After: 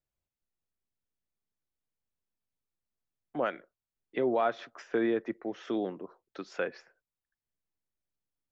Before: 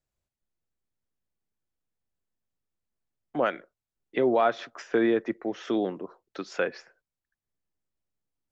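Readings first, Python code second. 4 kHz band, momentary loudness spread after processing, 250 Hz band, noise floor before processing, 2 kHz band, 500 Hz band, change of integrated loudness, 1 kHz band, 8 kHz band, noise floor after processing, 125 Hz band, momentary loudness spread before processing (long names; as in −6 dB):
−6.5 dB, 17 LU, −5.0 dB, below −85 dBFS, −5.5 dB, −5.0 dB, −5.0 dB, −5.0 dB, can't be measured, below −85 dBFS, −5.0 dB, 16 LU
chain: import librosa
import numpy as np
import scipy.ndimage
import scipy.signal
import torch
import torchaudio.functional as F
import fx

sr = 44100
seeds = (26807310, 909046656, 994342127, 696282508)

y = fx.high_shelf(x, sr, hz=5900.0, db=-6.0)
y = y * 10.0 ** (-5.0 / 20.0)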